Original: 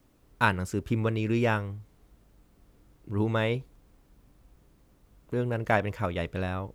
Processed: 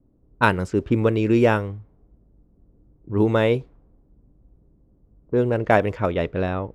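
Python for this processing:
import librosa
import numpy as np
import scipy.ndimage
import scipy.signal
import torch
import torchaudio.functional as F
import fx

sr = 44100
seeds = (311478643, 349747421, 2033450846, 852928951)

y = fx.env_lowpass(x, sr, base_hz=410.0, full_db=-23.0)
y = fx.dynamic_eq(y, sr, hz=410.0, q=0.77, threshold_db=-40.0, ratio=4.0, max_db=7)
y = y * 10.0 ** (4.0 / 20.0)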